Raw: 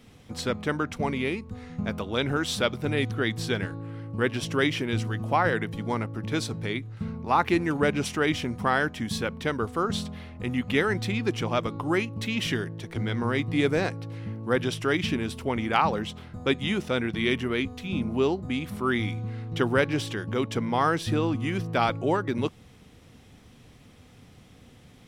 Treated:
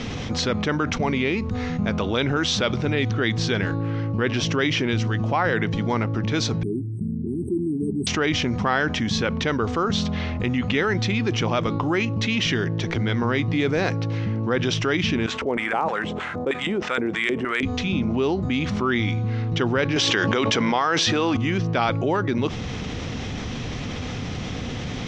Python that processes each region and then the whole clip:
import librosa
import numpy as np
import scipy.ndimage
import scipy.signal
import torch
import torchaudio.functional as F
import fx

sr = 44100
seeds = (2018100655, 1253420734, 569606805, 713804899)

y = fx.chain(x, sr, fx.brickwall_bandstop(low_hz=420.0, high_hz=8000.0),
    fx.tilt_eq(slope=3.5), at=(6.63, 8.07))
y = fx.chain(y, sr, fx.filter_lfo_bandpass(shape='square', hz=3.2, low_hz=460.0, high_hz=1600.0, q=1.3),
    fx.sample_hold(seeds[0], rate_hz=11000.0, jitter_pct=0), at=(15.26, 17.63))
y = fx.chain(y, sr, fx.highpass(hz=590.0, slope=6),
    fx.env_flatten(amount_pct=100), at=(19.96, 21.37))
y = scipy.signal.sosfilt(scipy.signal.ellip(4, 1.0, 70, 6400.0, 'lowpass', fs=sr, output='sos'), y)
y = fx.env_flatten(y, sr, amount_pct=70)